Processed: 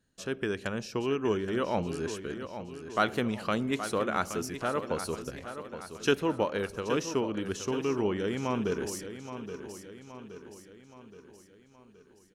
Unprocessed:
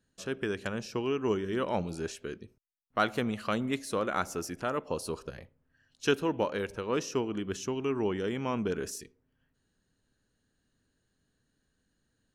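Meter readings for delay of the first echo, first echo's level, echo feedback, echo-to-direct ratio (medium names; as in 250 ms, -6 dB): 822 ms, -10.5 dB, 52%, -9.0 dB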